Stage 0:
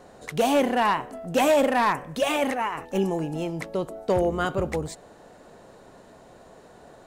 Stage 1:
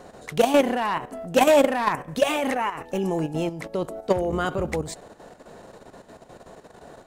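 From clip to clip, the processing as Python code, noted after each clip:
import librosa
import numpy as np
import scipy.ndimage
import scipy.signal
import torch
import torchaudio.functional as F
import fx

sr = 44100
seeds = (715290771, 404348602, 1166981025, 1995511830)

y = fx.level_steps(x, sr, step_db=10)
y = y * 10.0 ** (5.5 / 20.0)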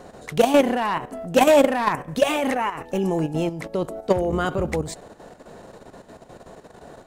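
y = fx.low_shelf(x, sr, hz=380.0, db=2.5)
y = y * 10.0 ** (1.0 / 20.0)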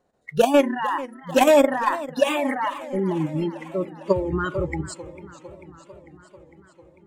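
y = fx.noise_reduce_blind(x, sr, reduce_db=27)
y = fx.echo_warbled(y, sr, ms=448, feedback_pct=69, rate_hz=2.8, cents=165, wet_db=-17.0)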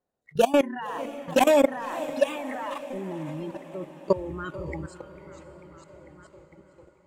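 y = fx.level_steps(x, sr, step_db=17)
y = fx.echo_diffused(y, sr, ms=570, feedback_pct=56, wet_db=-15.5)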